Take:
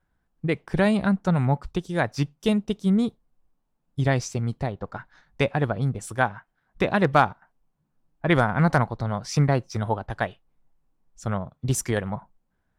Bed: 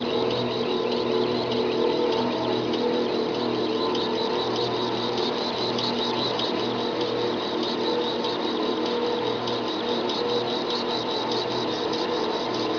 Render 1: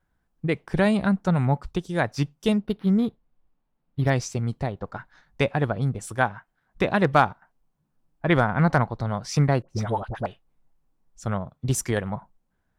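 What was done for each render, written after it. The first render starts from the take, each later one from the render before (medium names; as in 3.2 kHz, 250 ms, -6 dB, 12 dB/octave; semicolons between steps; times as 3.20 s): 2.52–4.10 s: decimation joined by straight lines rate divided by 6×; 8.29–8.94 s: peaking EQ 11 kHz -6.5 dB 1.6 oct; 9.62–10.26 s: phase dispersion highs, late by 68 ms, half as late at 880 Hz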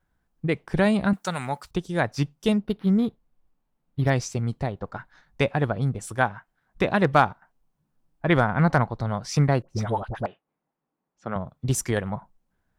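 1.13–1.71 s: tilt EQ +4.5 dB/octave; 10.26–11.36 s: band-pass 220–2300 Hz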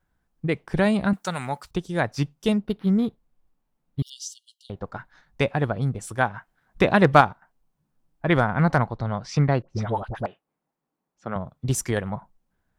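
4.02–4.70 s: brick-wall FIR high-pass 2.8 kHz; 6.34–7.21 s: gain +4 dB; 8.95–9.95 s: low-pass 4.9 kHz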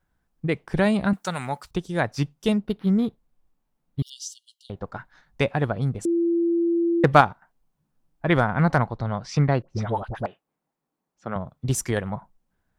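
6.05–7.04 s: bleep 339 Hz -18.5 dBFS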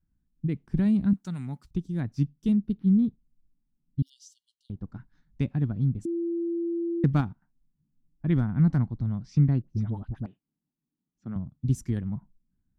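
FFT filter 270 Hz 0 dB, 530 Hz -22 dB, 6.2 kHz -16 dB, 9 kHz -18 dB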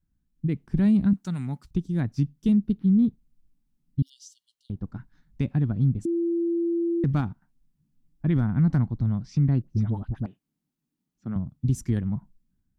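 peak limiter -18.5 dBFS, peak gain reduction 8 dB; level rider gain up to 4 dB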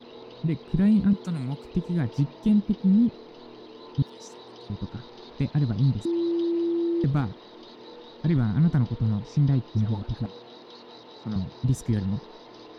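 add bed -20 dB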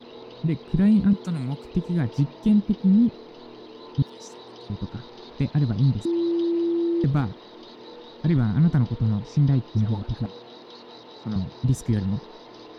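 trim +2 dB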